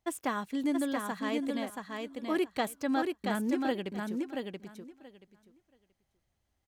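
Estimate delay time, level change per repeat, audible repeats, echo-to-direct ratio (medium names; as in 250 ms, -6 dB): 679 ms, -16.0 dB, 2, -4.0 dB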